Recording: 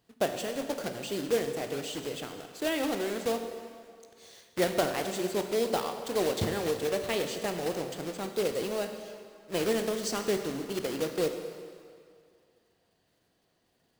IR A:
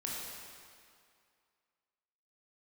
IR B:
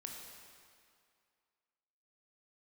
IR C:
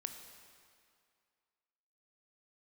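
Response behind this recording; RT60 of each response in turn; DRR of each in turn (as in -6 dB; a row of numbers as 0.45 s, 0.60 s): C; 2.3 s, 2.3 s, 2.3 s; -4.5 dB, 0.0 dB, 6.0 dB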